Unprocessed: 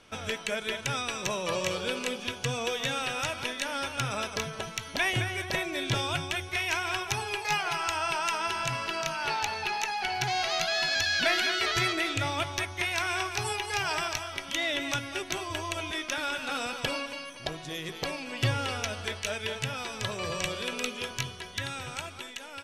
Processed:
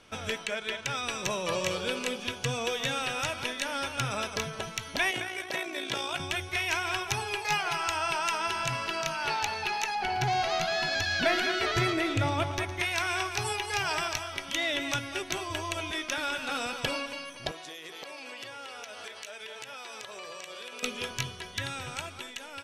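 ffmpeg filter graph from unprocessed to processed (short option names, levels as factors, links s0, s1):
-filter_complex "[0:a]asettb=1/sr,asplit=3[s0][s1][s2];[s0]atrim=end=0.454[s3];[s1]atrim=start=0.45:end=1.03,asetpts=PTS-STARTPTS,afade=t=in:d=0.004:c=qsin,afade=t=out:st=0.576:d=0.004:c=qsin,adynamicsmooth=sensitivity=3.5:basefreq=6600,lowshelf=f=420:g=-6[s4];[s2]atrim=start=1.026[s5];[s3][s4]acrossfade=d=0.004:c1=hsin:c2=qsin[s6];[s6][s5]acrossfade=d=0.004:c1=qsin:c2=hsin,asettb=1/sr,asplit=3[s7][s8][s9];[s7]atrim=end=5.114[s10];[s8]atrim=start=5.11:end=6.2,asetpts=PTS-STARTPTS,afade=t=in:d=0.004:c=qsin,afade=t=out:st=1.086:d=0.004:c=qsin,highpass=270,tremolo=f=58:d=0.519[s11];[s9]atrim=start=6.196[s12];[s10][s11]acrossfade=d=0.004:c1=hsin:c2=qsin[s13];[s13][s12]acrossfade=d=0.004:c1=qsin:c2=hsin,asettb=1/sr,asplit=3[s14][s15][s16];[s14]atrim=end=9.954[s17];[s15]atrim=start=9.95:end=12.8,asetpts=PTS-STARTPTS,afade=t=in:d=0.004:c=qsin,afade=t=out:st=2.846:d=0.004:c=qsin,tiltshelf=f=1300:g=5,aecho=1:1:113:0.188,atrim=end_sample=125685[s18];[s16]atrim=start=12.796[s19];[s17][s18]acrossfade=d=0.004:c1=hsin:c2=qsin[s20];[s20][s19]acrossfade=d=0.004:c1=qsin:c2=hsin,asettb=1/sr,asplit=3[s21][s22][s23];[s21]atrim=end=17.514[s24];[s22]atrim=start=17.51:end=20.83,asetpts=PTS-STARTPTS,afade=t=in:d=0.004:c=qsin,afade=t=out:st=3.316:d=0.004:c=qsin,highpass=420,acompressor=threshold=0.0126:ratio=10:attack=3.2:release=140:knee=1:detection=peak[s25];[s23]atrim=start=20.826[s26];[s24][s25]acrossfade=d=0.004:c1=hsin:c2=qsin[s27];[s27][s26]acrossfade=d=0.004:c1=qsin:c2=hsin"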